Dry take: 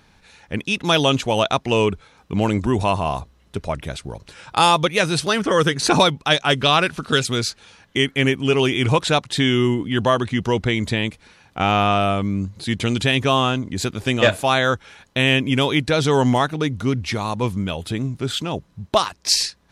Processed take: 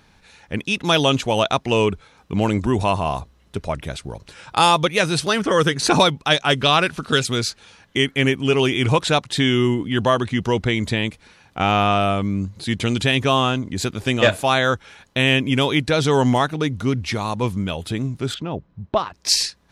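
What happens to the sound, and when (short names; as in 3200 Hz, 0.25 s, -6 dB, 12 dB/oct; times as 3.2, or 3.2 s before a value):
18.34–19.14 tape spacing loss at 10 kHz 31 dB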